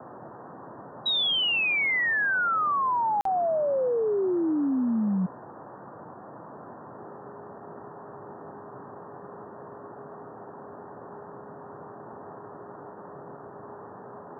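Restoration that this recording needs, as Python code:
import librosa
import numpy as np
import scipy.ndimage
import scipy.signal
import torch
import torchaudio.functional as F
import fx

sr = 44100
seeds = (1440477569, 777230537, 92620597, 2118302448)

y = fx.notch(x, sr, hz=410.0, q=30.0)
y = fx.fix_interpolate(y, sr, at_s=(3.21,), length_ms=43.0)
y = fx.noise_reduce(y, sr, print_start_s=5.35, print_end_s=5.85, reduce_db=30.0)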